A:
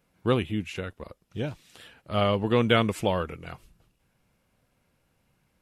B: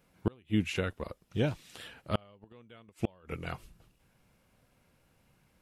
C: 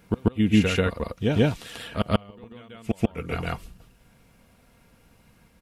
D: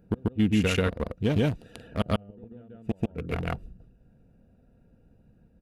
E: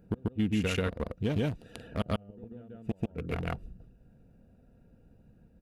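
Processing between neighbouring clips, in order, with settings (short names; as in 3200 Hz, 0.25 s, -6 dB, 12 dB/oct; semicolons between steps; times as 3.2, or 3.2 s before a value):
flipped gate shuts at -17 dBFS, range -35 dB; gain +2 dB
bell 71 Hz +3.5 dB 2.7 oct; comb 4.3 ms, depth 31%; reverse echo 0.139 s -3.5 dB; gain +7.5 dB
Wiener smoothing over 41 samples; limiter -15 dBFS, peak gain reduction 8.5 dB; high shelf 7300 Hz +6.5 dB
compressor 1.5:1, threshold -35 dBFS, peak gain reduction 6 dB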